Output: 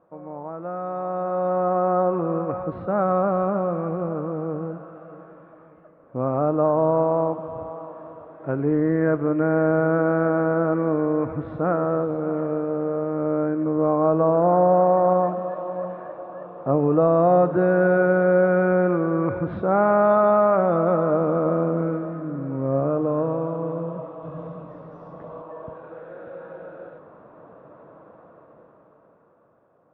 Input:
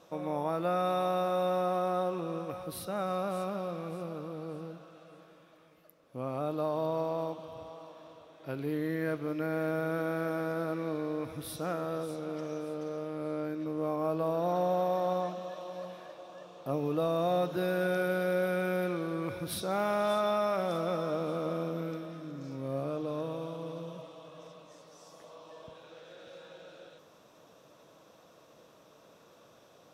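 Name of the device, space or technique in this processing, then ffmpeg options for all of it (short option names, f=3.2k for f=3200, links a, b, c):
action camera in a waterproof case: -filter_complex "[0:a]asettb=1/sr,asplit=3[a][b][c];[a]atrim=end=24.234[d];[b]atrim=start=24.23:end=25.42,asetpts=PTS-STARTPTS,afade=t=in:d=0.004:c=qsin,afade=t=out:st=1.186:d=0.004:c=qsin,bass=f=250:g=11,treble=f=4k:g=14[e];[c]atrim=start=25.416[f];[d][e]acrossfade=d=0.004:c1=hsin:c2=qsin[g];[g][f]acrossfade=d=0.004:c1=qsin:c2=hsin,lowpass=f=1.5k:w=0.5412,lowpass=f=1.5k:w=1.3066,dynaudnorm=f=150:g=21:m=15dB,volume=-2.5dB" -ar 48000 -c:a aac -b:a 96k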